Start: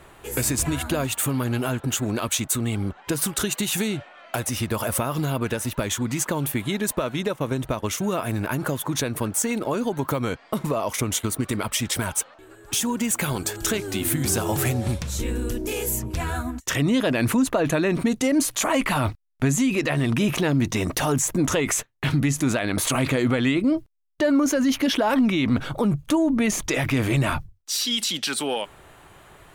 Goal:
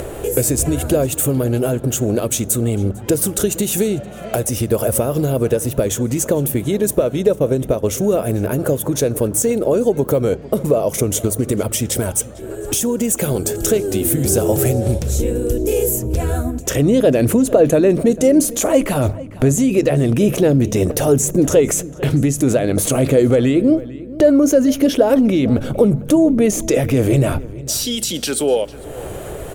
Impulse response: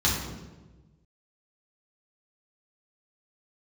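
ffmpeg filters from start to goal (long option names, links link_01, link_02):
-filter_complex "[0:a]equalizer=frequency=250:width_type=o:width=1:gain=-3,equalizer=frequency=500:width_type=o:width=1:gain=10,equalizer=frequency=1000:width_type=o:width=1:gain=-11,equalizer=frequency=2000:width_type=o:width=1:gain=-8,equalizer=frequency=4000:width_type=o:width=1:gain=-8,acompressor=mode=upward:threshold=-23dB:ratio=2.5,aeval=exprs='val(0)+0.00398*(sin(2*PI*60*n/s)+sin(2*PI*2*60*n/s)/2+sin(2*PI*3*60*n/s)/3+sin(2*PI*4*60*n/s)/4+sin(2*PI*5*60*n/s)/5)':channel_layout=same,asplit=2[link_01][link_02];[link_02]adelay=450,lowpass=frequency=3400:poles=1,volume=-18dB,asplit=2[link_03][link_04];[link_04]adelay=450,lowpass=frequency=3400:poles=1,volume=0.23[link_05];[link_01][link_03][link_05]amix=inputs=3:normalize=0,asplit=2[link_06][link_07];[1:a]atrim=start_sample=2205[link_08];[link_07][link_08]afir=irnorm=-1:irlink=0,volume=-34.5dB[link_09];[link_06][link_09]amix=inputs=2:normalize=0,volume=7dB"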